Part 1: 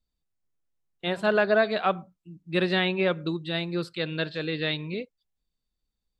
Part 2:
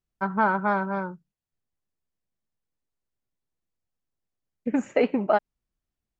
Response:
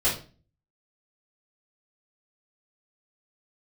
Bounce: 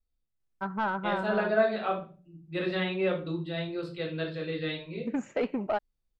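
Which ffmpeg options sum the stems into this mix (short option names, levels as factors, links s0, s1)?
-filter_complex "[0:a]volume=0.282,asplit=2[s0][s1];[s1]volume=0.422[s2];[1:a]highshelf=f=4000:g=10,asoftclip=type=tanh:threshold=0.178,adelay=400,volume=0.531[s3];[2:a]atrim=start_sample=2205[s4];[s2][s4]afir=irnorm=-1:irlink=0[s5];[s0][s3][s5]amix=inputs=3:normalize=0,highshelf=f=4700:g=-10"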